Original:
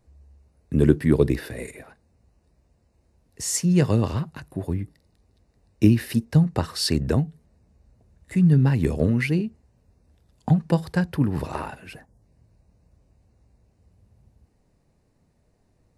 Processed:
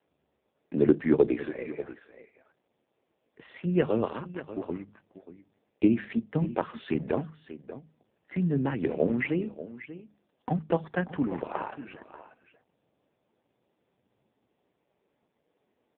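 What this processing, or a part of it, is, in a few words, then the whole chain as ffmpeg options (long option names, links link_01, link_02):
satellite phone: -af "highpass=310,lowpass=3100,aecho=1:1:588:0.188,bandreject=frequency=51.59:width_type=h:width=4,bandreject=frequency=103.18:width_type=h:width=4,bandreject=frequency=154.77:width_type=h:width=4,bandreject=frequency=206.36:width_type=h:width=4,volume=1dB" -ar 8000 -c:a libopencore_amrnb -b:a 5150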